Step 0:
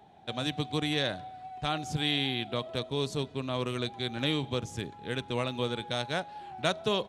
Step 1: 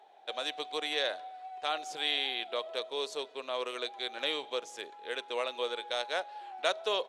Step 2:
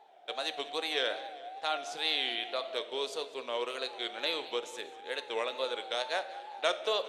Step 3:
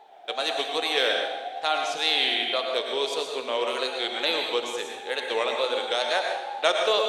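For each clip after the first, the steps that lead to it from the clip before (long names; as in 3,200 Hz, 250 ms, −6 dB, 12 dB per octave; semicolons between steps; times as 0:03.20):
Chebyshev high-pass filter 470 Hz, order 3; high-shelf EQ 9,500 Hz −7 dB
tape wow and flutter 120 cents; on a send at −11 dB: convolution reverb RT60 1.2 s, pre-delay 3 ms; on the sum: feedback echo with a swinging delay time 199 ms, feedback 53%, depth 121 cents, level −18.5 dB
dense smooth reverb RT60 0.68 s, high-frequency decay 0.95×, pre-delay 90 ms, DRR 3 dB; level +7 dB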